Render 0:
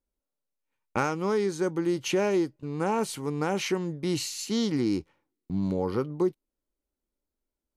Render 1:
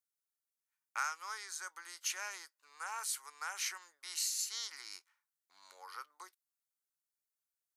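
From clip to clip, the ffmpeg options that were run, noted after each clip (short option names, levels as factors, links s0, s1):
-af "highpass=f=1400:w=0.5412,highpass=f=1400:w=1.3066,equalizer=f=2800:w=0.99:g=-13.5,volume=1.41"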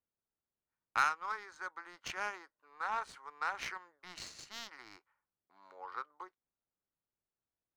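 -af "adynamicsmooth=sensitivity=3.5:basefreq=1100,lowshelf=f=320:g=5,volume=23.7,asoftclip=hard,volume=0.0422,volume=2.51"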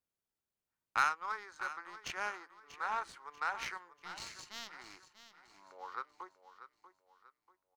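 -af "aecho=1:1:639|1278|1917|2556:0.224|0.0851|0.0323|0.0123"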